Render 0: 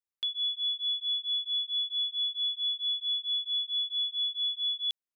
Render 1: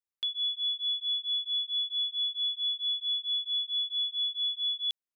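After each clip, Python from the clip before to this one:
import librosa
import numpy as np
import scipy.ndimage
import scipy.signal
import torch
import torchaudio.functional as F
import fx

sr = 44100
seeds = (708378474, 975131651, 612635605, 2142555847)

y = x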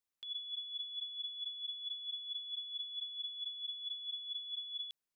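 y = fx.over_compress(x, sr, threshold_db=-39.0, ratio=-1.0)
y = y * 10.0 ** (-4.5 / 20.0)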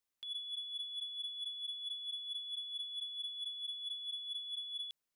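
y = 10.0 ** (-36.5 / 20.0) * np.tanh(x / 10.0 ** (-36.5 / 20.0))
y = y * 10.0 ** (1.5 / 20.0)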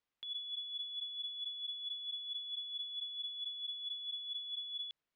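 y = scipy.signal.sosfilt(scipy.signal.butter(2, 3500.0, 'lowpass', fs=sr, output='sos'), x)
y = y * 10.0 ** (3.0 / 20.0)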